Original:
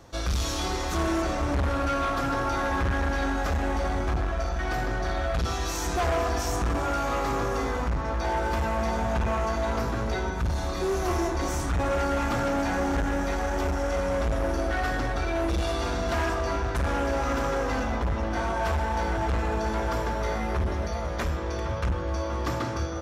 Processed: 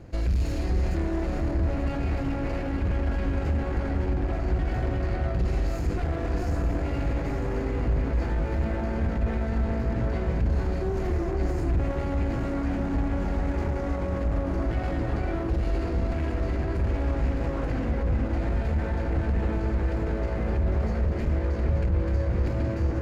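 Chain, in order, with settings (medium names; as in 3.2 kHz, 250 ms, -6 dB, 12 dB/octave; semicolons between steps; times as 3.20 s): comb filter that takes the minimum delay 0.44 ms; bass shelf 65 Hz -10.5 dB; on a send: echo whose repeats swap between lows and highs 442 ms, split 1.8 kHz, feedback 61%, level -3 dB; on the sum: peak limiter -26.5 dBFS, peak gain reduction 11.5 dB; tilt EQ -3.5 dB/octave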